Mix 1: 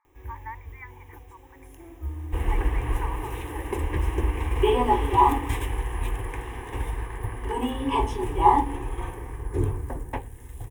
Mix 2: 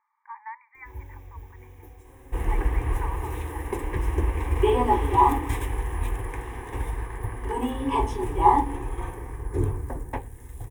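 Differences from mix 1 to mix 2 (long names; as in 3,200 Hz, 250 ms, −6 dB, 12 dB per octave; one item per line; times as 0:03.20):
first sound: entry +0.70 s
master: add parametric band 2,900 Hz −5.5 dB 0.43 octaves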